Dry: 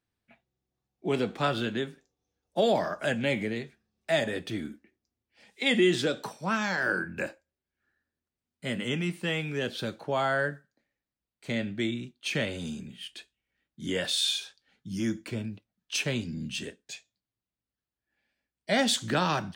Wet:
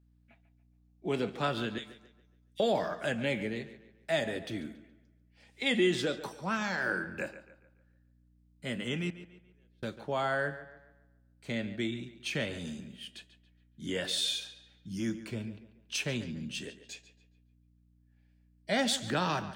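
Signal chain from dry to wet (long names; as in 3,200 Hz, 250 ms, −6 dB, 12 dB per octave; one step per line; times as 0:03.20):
0:01.78–0:02.60: linear-phase brick-wall high-pass 1,800 Hz
0:09.10–0:09.83: gate with flip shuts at −32 dBFS, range −40 dB
mains hum 60 Hz, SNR 29 dB
tape delay 142 ms, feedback 42%, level −13 dB, low-pass 4,300 Hz
level −4 dB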